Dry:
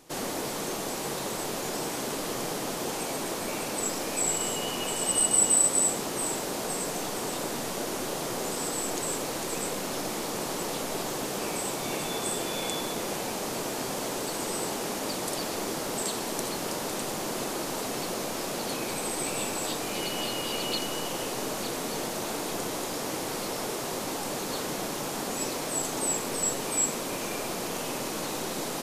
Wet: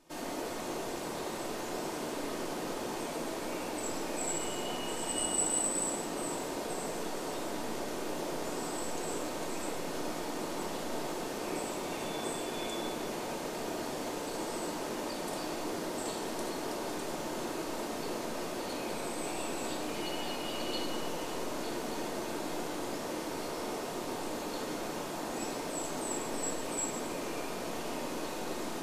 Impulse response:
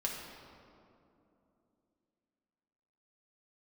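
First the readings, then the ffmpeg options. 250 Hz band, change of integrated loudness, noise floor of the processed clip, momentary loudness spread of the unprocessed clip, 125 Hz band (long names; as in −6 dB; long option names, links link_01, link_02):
−3.0 dB, −6.5 dB, −39 dBFS, 6 LU, −6.5 dB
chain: -filter_complex "[0:a]highshelf=frequency=4300:gain=-5.5[link_01];[1:a]atrim=start_sample=2205,asetrate=70560,aresample=44100[link_02];[link_01][link_02]afir=irnorm=-1:irlink=0,volume=-3.5dB"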